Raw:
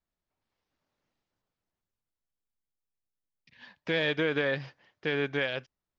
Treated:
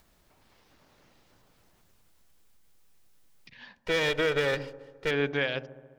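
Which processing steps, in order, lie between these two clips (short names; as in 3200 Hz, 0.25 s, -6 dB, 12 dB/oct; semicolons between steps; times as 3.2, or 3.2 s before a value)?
3.76–5.11 minimum comb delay 2.1 ms; upward compressor, threshold -47 dBFS; dark delay 70 ms, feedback 73%, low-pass 780 Hz, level -14 dB; gain +1.5 dB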